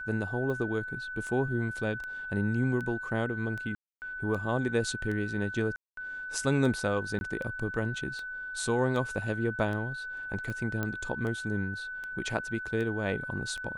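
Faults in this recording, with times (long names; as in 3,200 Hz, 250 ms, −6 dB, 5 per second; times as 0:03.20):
scratch tick 78 rpm −26 dBFS
whistle 1,500 Hz −36 dBFS
0:03.75–0:04.02: drop-out 269 ms
0:05.76–0:05.97: drop-out 213 ms
0:07.19–0:07.21: drop-out 21 ms
0:10.83: click −18 dBFS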